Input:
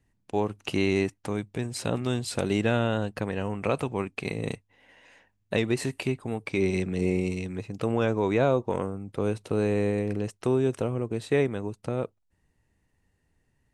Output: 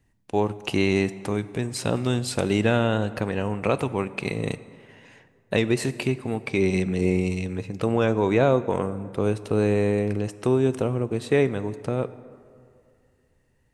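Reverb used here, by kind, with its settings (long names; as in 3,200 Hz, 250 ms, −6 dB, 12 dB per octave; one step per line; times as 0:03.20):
dense smooth reverb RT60 2.4 s, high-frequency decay 0.55×, DRR 14.5 dB
level +3.5 dB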